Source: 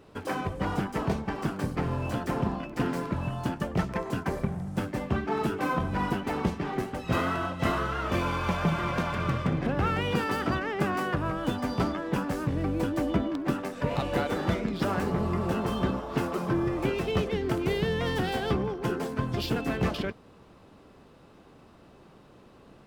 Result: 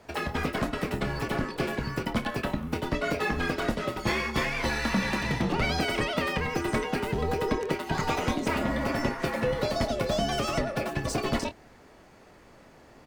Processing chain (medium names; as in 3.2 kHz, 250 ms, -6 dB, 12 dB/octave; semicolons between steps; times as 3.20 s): wide varispeed 1.75×; frequency shift -89 Hz; doubling 26 ms -10.5 dB